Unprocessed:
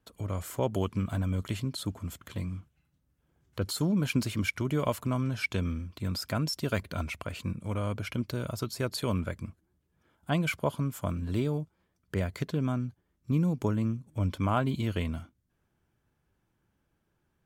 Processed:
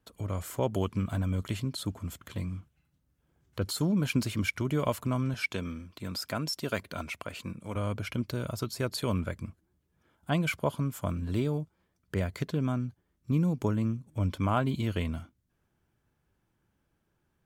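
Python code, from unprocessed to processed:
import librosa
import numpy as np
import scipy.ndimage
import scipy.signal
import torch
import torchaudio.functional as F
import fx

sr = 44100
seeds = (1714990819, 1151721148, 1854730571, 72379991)

y = fx.highpass(x, sr, hz=230.0, slope=6, at=(5.34, 7.76))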